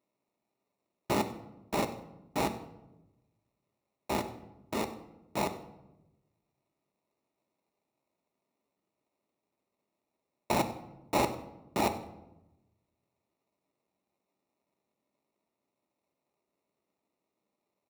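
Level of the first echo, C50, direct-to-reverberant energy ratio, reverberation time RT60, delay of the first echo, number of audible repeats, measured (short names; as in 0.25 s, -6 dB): -19.5 dB, 12.0 dB, 7.0 dB, 0.95 s, 96 ms, 1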